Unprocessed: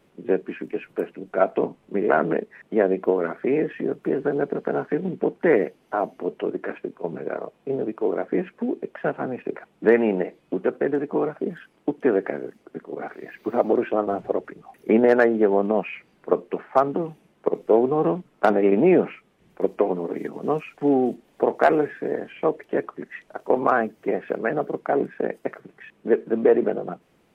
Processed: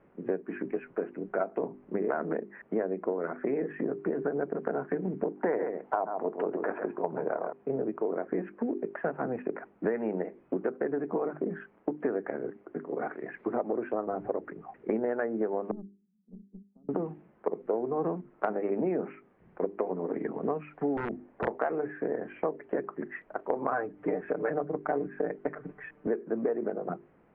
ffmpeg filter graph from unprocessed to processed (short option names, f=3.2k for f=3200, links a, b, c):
-filter_complex "[0:a]asettb=1/sr,asplit=3[a][b][c];[a]atrim=end=5.374[d];[b]atrim=start=5.37:end=7.53,asetpts=PTS-STARTPTS,afade=t=in:d=0.004:c=qsin,afade=t=out:st=2.156:d=0.004:c=qsin,equalizer=f=840:t=o:w=1.3:g=9.5,aecho=1:1:135:0.376,atrim=end_sample=95256[e];[c]atrim=start=7.526[f];[d][e]acrossfade=d=0.004:c1=hsin:c2=qsin[g];[g][f]acrossfade=d=0.004:c1=qsin:c2=hsin,asettb=1/sr,asplit=3[h][i][j];[h]atrim=end=15.714[k];[i]atrim=start=15.71:end=16.89,asetpts=PTS-STARTPTS,afade=t=in:d=0.004:c=qsin,afade=t=out:st=1.176:d=0.004:c=qsin,asuperpass=centerf=200:order=4:qfactor=6.6,aeval=exprs='(tanh(44.7*val(0)+0.55)-tanh(0.55))/44.7':c=same[l];[j]atrim=start=16.886[m];[k][l]acrossfade=d=0.004:c1=hsin:c2=qsin[n];[n][m]acrossfade=d=0.004:c1=qsin:c2=hsin,asettb=1/sr,asplit=3[o][p][q];[o]atrim=end=20.974[r];[p]atrim=start=20.97:end=21.48,asetpts=PTS-STARTPTS,afade=t=in:d=0.004:c=qsin,afade=t=out:st=0.506:d=0.004:c=qsin,lowpass=2.6k,acompressor=threshold=-22dB:ratio=3:attack=3.2:release=140:knee=1:detection=peak,aeval=exprs='(mod(8.91*val(0)+1,2)-1)/8.91':c=same[s];[q]atrim=start=21.476[t];[r][s]acrossfade=d=0.004:c1=hsin:c2=qsin[u];[u][t]acrossfade=d=0.004:c1=qsin:c2=hsin,asettb=1/sr,asplit=3[v][w][x];[v]atrim=end=23.724[y];[w]atrim=start=23.72:end=26.07,asetpts=PTS-STARTPTS,afade=t=in:d=0.004:c=qsin,afade=t=out:st=2.346:d=0.004:c=qsin,lowshelf=f=75:g=9,aecho=1:1:6.7:0.9,atrim=end_sample=103635,acrusher=bits=7:mode=log:mix=0:aa=0.000001[z];[x]atrim=start=26.066[aa];[y][z]acrossfade=d=0.004:c1=hsin:c2=qsin[ab];[ab][aa]acrossfade=d=0.004:c1=qsin:c2=hsin,lowpass=f=1.9k:w=0.5412,lowpass=f=1.9k:w=1.3066,bandreject=f=50:t=h:w=6,bandreject=f=100:t=h:w=6,bandreject=f=150:t=h:w=6,bandreject=f=200:t=h:w=6,bandreject=f=250:t=h:w=6,bandreject=f=300:t=h:w=6,bandreject=f=350:t=h:w=6,bandreject=f=400:t=h:w=6,acompressor=threshold=-27dB:ratio=6"